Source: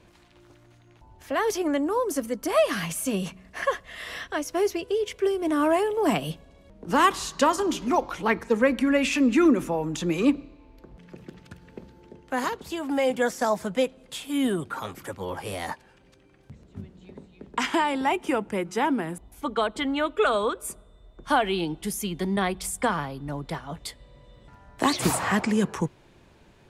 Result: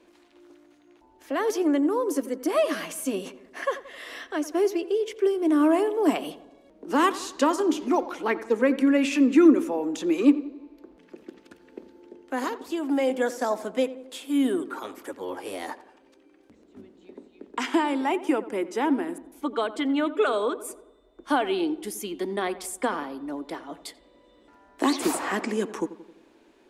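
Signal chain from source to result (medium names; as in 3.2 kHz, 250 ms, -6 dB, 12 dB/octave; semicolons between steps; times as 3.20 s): resonant low shelf 200 Hz -13.5 dB, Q 3; filtered feedback delay 88 ms, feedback 57%, low-pass 1.7 kHz, level -14.5 dB; trim -3.5 dB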